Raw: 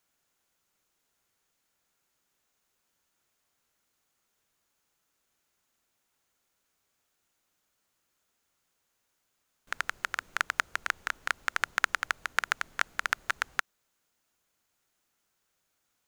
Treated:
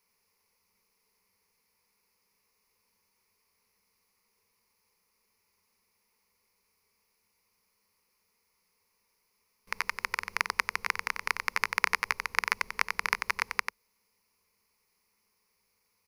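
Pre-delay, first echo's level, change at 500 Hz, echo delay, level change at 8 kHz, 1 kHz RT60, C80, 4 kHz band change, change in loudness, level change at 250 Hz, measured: none, -6.5 dB, +2.0 dB, 92 ms, 0.0 dB, none, none, +1.0 dB, +1.5 dB, +2.0 dB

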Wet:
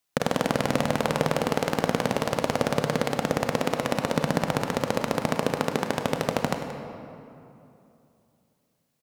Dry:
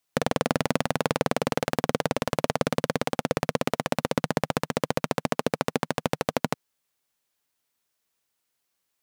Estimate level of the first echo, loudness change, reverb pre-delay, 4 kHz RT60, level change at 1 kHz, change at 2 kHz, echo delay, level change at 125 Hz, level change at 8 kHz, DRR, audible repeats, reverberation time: -13.5 dB, +1.5 dB, 31 ms, 1.6 s, +1.5 dB, +1.0 dB, 0.178 s, +2.0 dB, +0.5 dB, 5.0 dB, 1, 2.8 s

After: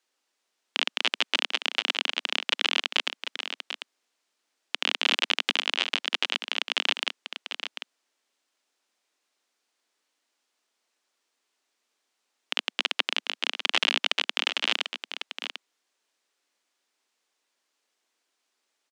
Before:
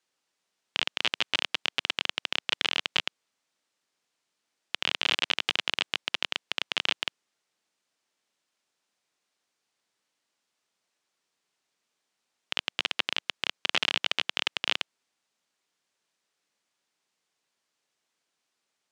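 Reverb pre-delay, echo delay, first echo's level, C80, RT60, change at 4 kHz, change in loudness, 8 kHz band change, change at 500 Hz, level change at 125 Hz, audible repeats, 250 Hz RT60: none, 0.744 s, -9.0 dB, none, none, +2.5 dB, +2.0 dB, +2.5 dB, +2.5 dB, under -10 dB, 1, none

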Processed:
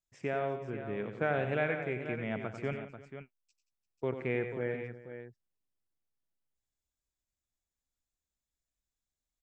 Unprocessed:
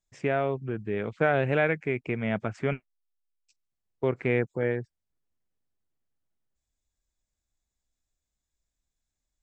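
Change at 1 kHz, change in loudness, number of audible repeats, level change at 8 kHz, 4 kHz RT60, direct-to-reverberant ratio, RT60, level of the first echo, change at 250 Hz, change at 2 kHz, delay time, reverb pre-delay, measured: -6.5 dB, -7.0 dB, 4, n/a, none, none, none, -9.0 dB, -7.0 dB, -6.5 dB, 93 ms, none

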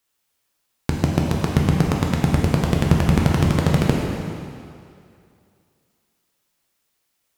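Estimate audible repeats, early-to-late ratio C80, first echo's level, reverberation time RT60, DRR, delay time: none, 2.0 dB, none, 2.4 s, -1.5 dB, none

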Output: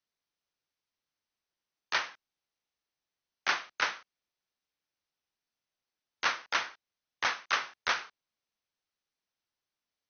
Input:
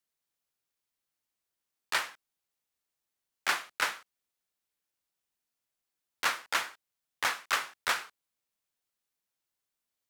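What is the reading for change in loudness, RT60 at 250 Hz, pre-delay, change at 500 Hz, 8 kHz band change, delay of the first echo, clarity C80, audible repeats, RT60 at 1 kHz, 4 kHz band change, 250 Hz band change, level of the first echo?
-0.5 dB, none, none, 0.0 dB, -5.0 dB, none, none, none, none, 0.0 dB, 0.0 dB, none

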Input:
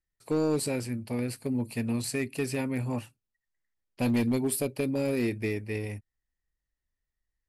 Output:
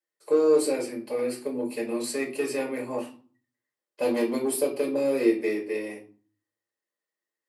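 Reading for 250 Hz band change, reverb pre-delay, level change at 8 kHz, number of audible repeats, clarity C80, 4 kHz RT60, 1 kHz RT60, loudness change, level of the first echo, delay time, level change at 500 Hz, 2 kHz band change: 0.0 dB, 3 ms, +1.0 dB, none, 15.5 dB, 0.30 s, 0.40 s, +3.5 dB, none, none, +7.5 dB, +1.5 dB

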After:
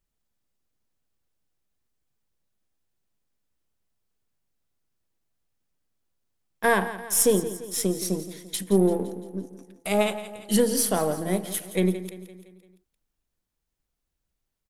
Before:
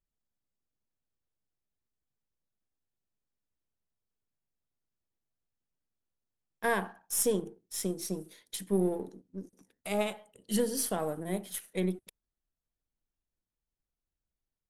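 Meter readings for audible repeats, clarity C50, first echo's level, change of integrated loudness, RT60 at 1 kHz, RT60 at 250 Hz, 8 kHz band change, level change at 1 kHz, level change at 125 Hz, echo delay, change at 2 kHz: 4, none, -14.0 dB, +8.0 dB, none, none, +8.0 dB, +8.0 dB, +8.0 dB, 0.171 s, +8.5 dB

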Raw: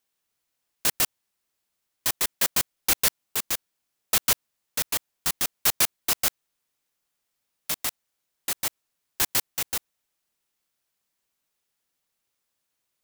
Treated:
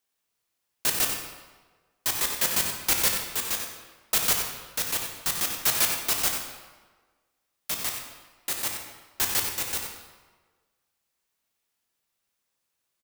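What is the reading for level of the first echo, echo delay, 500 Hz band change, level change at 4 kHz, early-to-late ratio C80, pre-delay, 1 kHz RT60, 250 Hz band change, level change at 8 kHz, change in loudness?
-8.0 dB, 93 ms, +0.5 dB, 0.0 dB, 4.0 dB, 16 ms, 1.4 s, 0.0 dB, 0.0 dB, -0.5 dB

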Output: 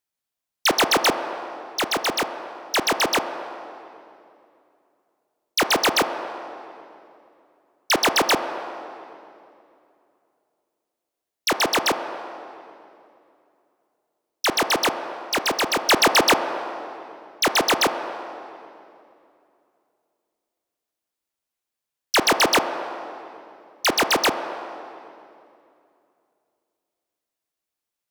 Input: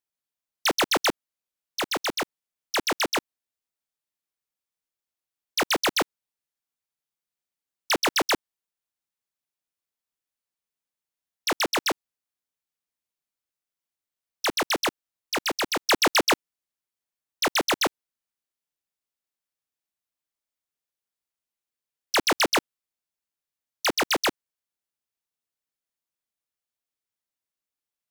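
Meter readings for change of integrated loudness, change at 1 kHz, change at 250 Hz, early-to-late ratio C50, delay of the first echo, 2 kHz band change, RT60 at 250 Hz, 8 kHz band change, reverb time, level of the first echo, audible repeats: +3.5 dB, +6.0 dB, +4.0 dB, 7.5 dB, none, +4.5 dB, 3.0 s, +4.0 dB, 2.6 s, none, none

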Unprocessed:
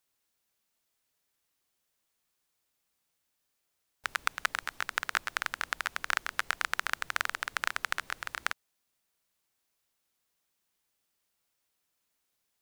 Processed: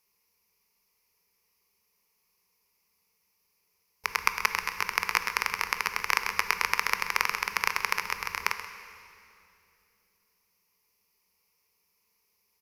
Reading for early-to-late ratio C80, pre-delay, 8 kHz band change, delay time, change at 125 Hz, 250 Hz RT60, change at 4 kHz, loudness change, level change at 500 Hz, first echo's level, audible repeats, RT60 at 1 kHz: 9.0 dB, 17 ms, +5.5 dB, 0.131 s, +6.5 dB, 3.5 s, +4.0 dB, +5.0 dB, +5.5 dB, -13.5 dB, 1, 2.5 s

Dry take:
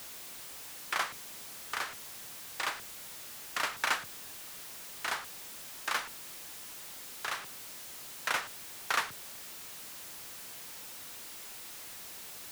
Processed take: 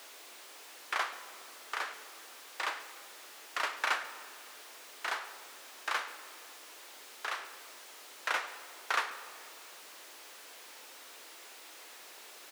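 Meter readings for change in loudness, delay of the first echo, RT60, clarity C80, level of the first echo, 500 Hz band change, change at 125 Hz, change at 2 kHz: -2.0 dB, 0.138 s, 2.5 s, 12.5 dB, -19.5 dB, 0.0 dB, under -25 dB, -0.5 dB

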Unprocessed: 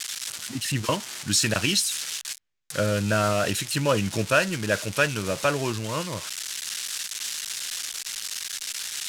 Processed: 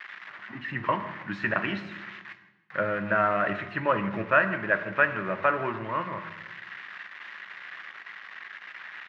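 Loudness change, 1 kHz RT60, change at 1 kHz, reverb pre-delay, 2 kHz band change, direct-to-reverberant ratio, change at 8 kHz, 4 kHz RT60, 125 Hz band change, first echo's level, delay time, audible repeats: -1.5 dB, 0.95 s, +2.5 dB, 3 ms, +1.5 dB, 8.5 dB, under -40 dB, 0.80 s, -9.5 dB, -20.5 dB, 0.159 s, 2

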